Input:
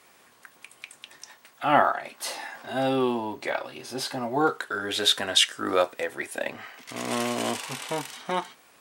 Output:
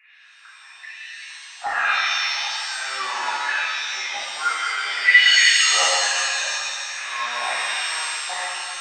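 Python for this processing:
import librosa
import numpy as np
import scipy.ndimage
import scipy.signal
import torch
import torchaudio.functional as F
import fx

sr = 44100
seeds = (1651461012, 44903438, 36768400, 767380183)

y = fx.freq_compress(x, sr, knee_hz=1600.0, ratio=4.0)
y = fx.filter_lfo_highpass(y, sr, shape='saw_down', hz=1.2, low_hz=780.0, high_hz=2000.0, q=3.5)
y = fx.rev_shimmer(y, sr, seeds[0], rt60_s=2.0, semitones=7, shimmer_db=-2, drr_db=-7.0)
y = y * librosa.db_to_amplitude(-10.0)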